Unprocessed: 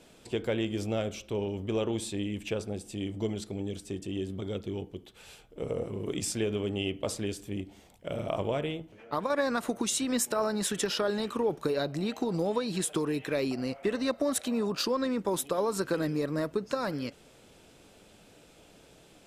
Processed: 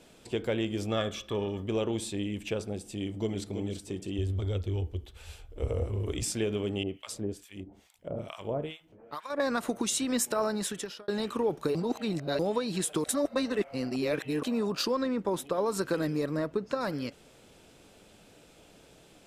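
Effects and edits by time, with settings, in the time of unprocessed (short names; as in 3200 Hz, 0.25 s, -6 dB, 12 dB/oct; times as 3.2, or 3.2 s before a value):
0.89–1.64 small resonant body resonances 1200/1700/3400 Hz, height 16 dB, ringing for 30 ms
2.99–3.44 echo throw 0.33 s, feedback 30%, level -8.5 dB
4.18–6.23 resonant low shelf 110 Hz +13 dB, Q 3
6.83–9.4 harmonic tremolo 2.3 Hz, depth 100%, crossover 1100 Hz
10.5–11.08 fade out
11.75–12.39 reverse
13.04–14.43 reverse
15.03–15.66 high shelf 4200 Hz -9 dB
16.37–16.81 high shelf 5300 Hz -10.5 dB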